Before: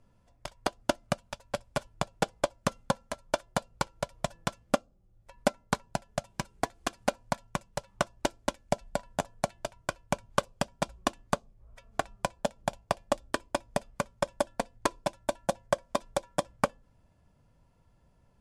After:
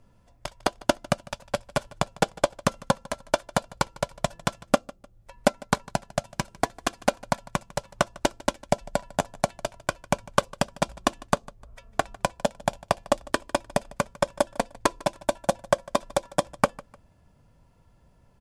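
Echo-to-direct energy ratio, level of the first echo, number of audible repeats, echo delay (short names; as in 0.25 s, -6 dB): -21.5 dB, -22.0 dB, 2, 0.151 s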